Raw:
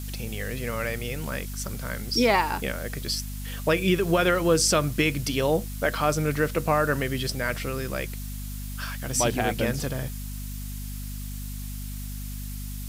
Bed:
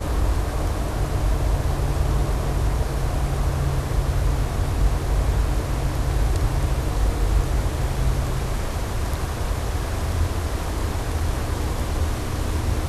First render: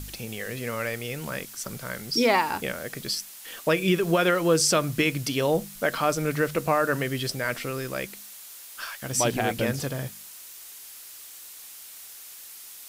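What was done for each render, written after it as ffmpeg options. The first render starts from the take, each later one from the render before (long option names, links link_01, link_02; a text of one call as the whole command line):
ffmpeg -i in.wav -af "bandreject=frequency=50:width_type=h:width=4,bandreject=frequency=100:width_type=h:width=4,bandreject=frequency=150:width_type=h:width=4,bandreject=frequency=200:width_type=h:width=4,bandreject=frequency=250:width_type=h:width=4" out.wav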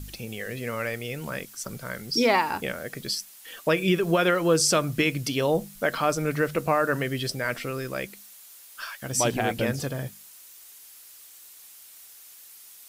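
ffmpeg -i in.wav -af "afftdn=noise_reduction=6:noise_floor=-44" out.wav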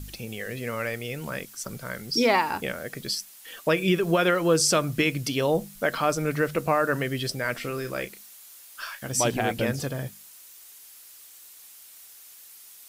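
ffmpeg -i in.wav -filter_complex "[0:a]asettb=1/sr,asplit=3[link_01][link_02][link_03];[link_01]atrim=end=7.584[link_04];[link_02]atrim=start=7.58:end=9.09,asetpts=PTS-STARTPTS,afade=type=in:duration=0.004:curve=qsin,afade=type=out:start_time=1.506:duration=0.004:curve=qsin,asplit=2[link_05][link_06];[link_06]adelay=33,volume=-10dB[link_07];[link_05][link_07]amix=inputs=2:normalize=0,atrim=end_sample=66591[link_08];[link_03]atrim=start=9.086[link_09];[link_04][link_08]acrossfade=duration=0.004:curve1=hsin:curve2=qsin[link_10];[link_10][link_09]acrossfade=duration=0.004:curve1=qsin:curve2=hsin" out.wav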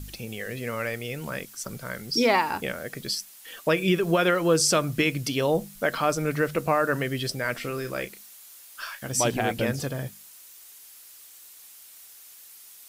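ffmpeg -i in.wav -af anull out.wav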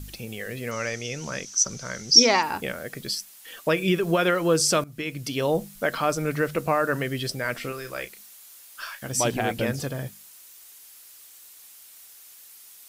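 ffmpeg -i in.wav -filter_complex "[0:a]asettb=1/sr,asplit=3[link_01][link_02][link_03];[link_01]atrim=end=0.714[link_04];[link_02]atrim=start=0.71:end=2.43,asetpts=PTS-STARTPTS,afade=type=in:duration=0.004:curve=qsin,afade=type=out:start_time=1.716:duration=0.004:curve=qsin,lowpass=frequency=6000:width_type=q:width=11[link_05];[link_03]atrim=start=2.426[link_06];[link_04][link_05]acrossfade=duration=0.004:curve1=hsin:curve2=qsin[link_07];[link_07][link_06]acrossfade=duration=0.004:curve1=qsin:curve2=hsin,asettb=1/sr,asplit=3[link_08][link_09][link_10];[link_08]atrim=end=7.724[link_11];[link_09]atrim=start=7.72:end=8.18,asetpts=PTS-STARTPTS,afade=type=in:duration=0.004:curve=qsin,afade=type=out:start_time=0.456:duration=0.004:curve=qsin,equalizer=frequency=210:width_type=o:width=2:gain=-9.5[link_12];[link_10]atrim=start=8.176[link_13];[link_11][link_12]acrossfade=duration=0.004:curve1=hsin:curve2=qsin[link_14];[link_14][link_13]acrossfade=duration=0.004:curve1=qsin:curve2=hsin,asplit=2[link_15][link_16];[link_15]atrim=end=4.84,asetpts=PTS-STARTPTS,afade=type=out:start_time=4.836:duration=0.004:curve=hsin:silence=0.11885[link_17];[link_16]atrim=start=4.84,asetpts=PTS-STARTPTS,afade=type=in:duration=0.63:silence=0.11885[link_18];[link_17][link_18]concat=n=2:v=0:a=1" out.wav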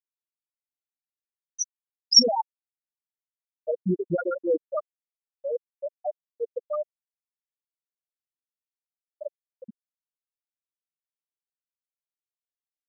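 ffmpeg -i in.wav -af "afftfilt=real='re*gte(hypot(re,im),0.631)':imag='im*gte(hypot(re,im),0.631)':win_size=1024:overlap=0.75,equalizer=frequency=400:width=3.8:gain=-3" out.wav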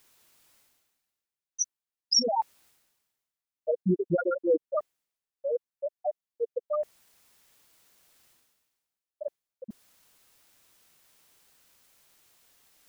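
ffmpeg -i in.wav -af "alimiter=limit=-14.5dB:level=0:latency=1:release=216,areverse,acompressor=mode=upward:threshold=-37dB:ratio=2.5,areverse" out.wav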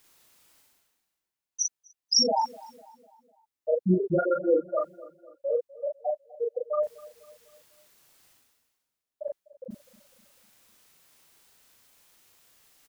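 ffmpeg -i in.wav -filter_complex "[0:a]asplit=2[link_01][link_02];[link_02]adelay=38,volume=-2dB[link_03];[link_01][link_03]amix=inputs=2:normalize=0,asplit=2[link_04][link_05];[link_05]adelay=250,lowpass=frequency=2300:poles=1,volume=-20dB,asplit=2[link_06][link_07];[link_07]adelay=250,lowpass=frequency=2300:poles=1,volume=0.51,asplit=2[link_08][link_09];[link_09]adelay=250,lowpass=frequency=2300:poles=1,volume=0.51,asplit=2[link_10][link_11];[link_11]adelay=250,lowpass=frequency=2300:poles=1,volume=0.51[link_12];[link_04][link_06][link_08][link_10][link_12]amix=inputs=5:normalize=0" out.wav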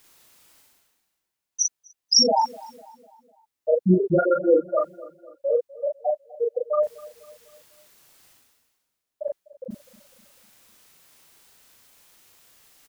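ffmpeg -i in.wav -af "volume=5dB" out.wav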